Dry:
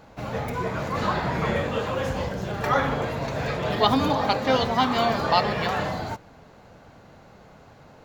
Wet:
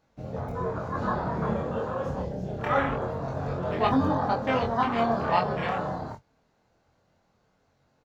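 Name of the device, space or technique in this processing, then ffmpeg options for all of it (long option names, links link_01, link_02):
double-tracked vocal: -filter_complex "[0:a]afwtdn=0.0447,asplit=2[link_01][link_02];[link_02]adelay=22,volume=-11dB[link_03];[link_01][link_03]amix=inputs=2:normalize=0,flanger=delay=22.5:depth=5:speed=0.26,equalizer=frequency=5700:width=1.1:gain=5.5"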